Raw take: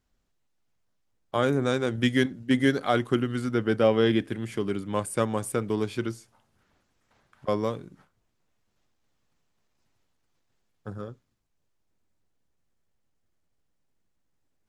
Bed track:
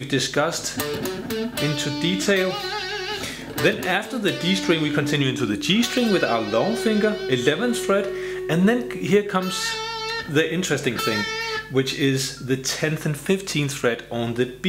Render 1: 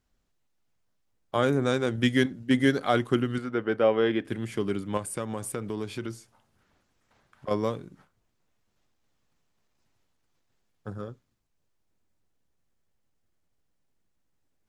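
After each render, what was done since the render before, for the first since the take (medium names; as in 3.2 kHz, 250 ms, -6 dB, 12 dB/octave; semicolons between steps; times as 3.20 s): 3.38–4.25 s: tone controls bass -10 dB, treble -15 dB; 4.97–7.51 s: compression 2.5:1, threshold -30 dBFS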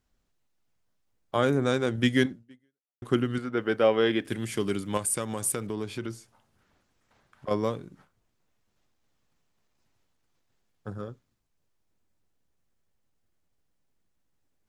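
2.31–3.02 s: fade out exponential; 3.57–5.67 s: treble shelf 3.5 kHz +10.5 dB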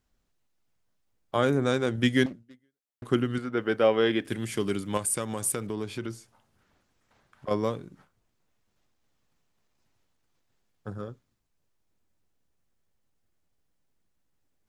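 2.26–3.05 s: self-modulated delay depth 0.7 ms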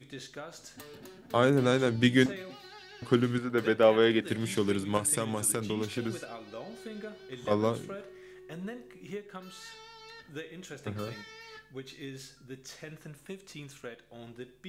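add bed track -22 dB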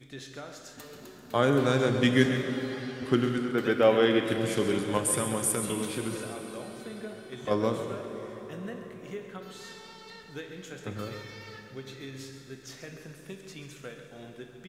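delay 135 ms -11 dB; plate-style reverb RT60 4.7 s, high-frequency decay 0.75×, DRR 5.5 dB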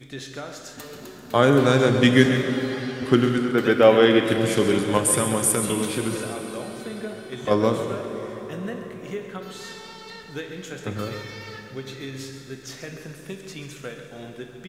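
trim +7 dB; peak limiter -2 dBFS, peak gain reduction 1.5 dB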